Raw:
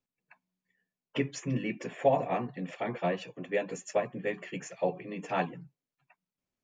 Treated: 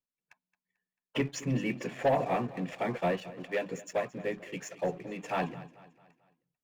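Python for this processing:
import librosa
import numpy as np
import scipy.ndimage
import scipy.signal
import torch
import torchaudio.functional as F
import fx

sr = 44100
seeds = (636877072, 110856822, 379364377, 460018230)

y = fx.leveller(x, sr, passes=2)
y = fx.harmonic_tremolo(y, sr, hz=1.7, depth_pct=50, crossover_hz=570.0, at=(3.2, 5.43))
y = fx.echo_feedback(y, sr, ms=221, feedback_pct=44, wet_db=-18)
y = y * librosa.db_to_amplitude(-5.5)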